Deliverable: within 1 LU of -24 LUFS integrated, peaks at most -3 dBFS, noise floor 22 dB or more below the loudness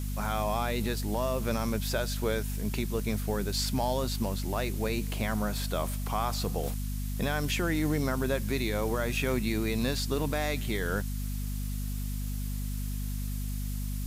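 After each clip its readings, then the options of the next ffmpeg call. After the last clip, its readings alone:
hum 50 Hz; highest harmonic 250 Hz; hum level -31 dBFS; noise floor -33 dBFS; noise floor target -54 dBFS; loudness -31.5 LUFS; peak level -17.0 dBFS; loudness target -24.0 LUFS
-> -af "bandreject=f=50:t=h:w=4,bandreject=f=100:t=h:w=4,bandreject=f=150:t=h:w=4,bandreject=f=200:t=h:w=4,bandreject=f=250:t=h:w=4"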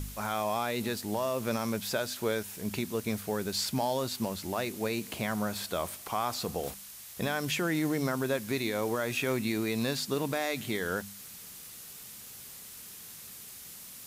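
hum not found; noise floor -47 dBFS; noise floor target -54 dBFS
-> -af "afftdn=nr=7:nf=-47"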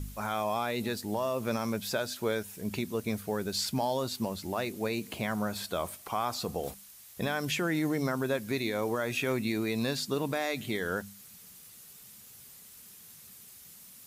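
noise floor -52 dBFS; noise floor target -55 dBFS
-> -af "afftdn=nr=6:nf=-52"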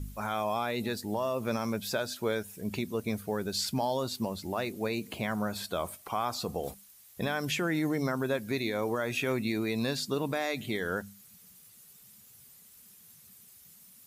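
noise floor -56 dBFS; loudness -32.5 LUFS; peak level -19.0 dBFS; loudness target -24.0 LUFS
-> -af "volume=2.66"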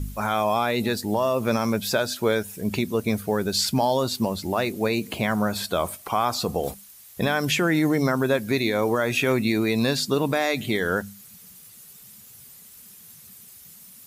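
loudness -24.0 LUFS; peak level -10.5 dBFS; noise floor -48 dBFS

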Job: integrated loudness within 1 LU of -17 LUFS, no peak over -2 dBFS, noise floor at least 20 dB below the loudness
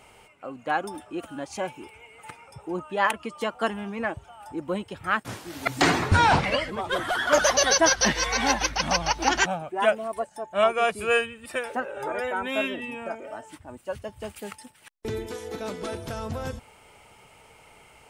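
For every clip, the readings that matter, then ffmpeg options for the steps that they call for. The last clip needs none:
loudness -25.5 LUFS; peak level -7.0 dBFS; loudness target -17.0 LUFS
-> -af "volume=2.66,alimiter=limit=0.794:level=0:latency=1"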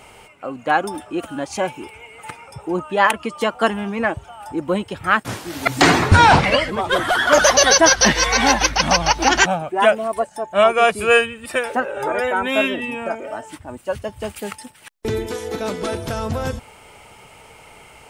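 loudness -17.5 LUFS; peak level -2.0 dBFS; noise floor -46 dBFS

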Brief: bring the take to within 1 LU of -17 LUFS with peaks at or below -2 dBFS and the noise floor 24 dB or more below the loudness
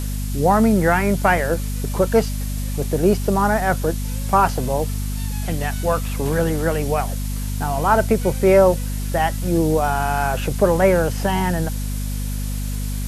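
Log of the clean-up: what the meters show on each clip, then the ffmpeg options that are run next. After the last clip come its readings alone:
hum 50 Hz; highest harmonic 250 Hz; hum level -22 dBFS; noise floor -25 dBFS; noise floor target -44 dBFS; loudness -20.0 LUFS; peak level -3.0 dBFS; loudness target -17.0 LUFS
-> -af "bandreject=f=50:t=h:w=6,bandreject=f=100:t=h:w=6,bandreject=f=150:t=h:w=6,bandreject=f=200:t=h:w=6,bandreject=f=250:t=h:w=6"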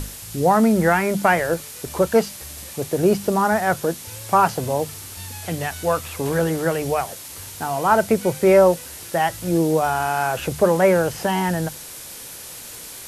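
hum not found; noise floor -37 dBFS; noise floor target -44 dBFS
-> -af "afftdn=nr=7:nf=-37"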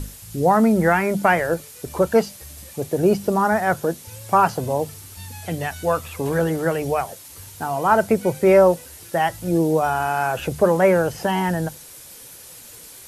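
noise floor -42 dBFS; noise floor target -44 dBFS
-> -af "afftdn=nr=6:nf=-42"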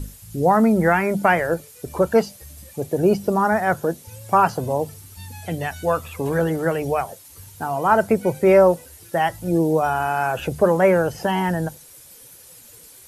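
noise floor -46 dBFS; loudness -20.0 LUFS; peak level -3.0 dBFS; loudness target -17.0 LUFS
-> -af "volume=1.41,alimiter=limit=0.794:level=0:latency=1"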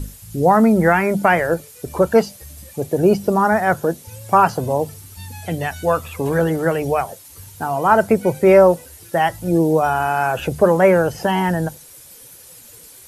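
loudness -17.5 LUFS; peak level -2.0 dBFS; noise floor -43 dBFS

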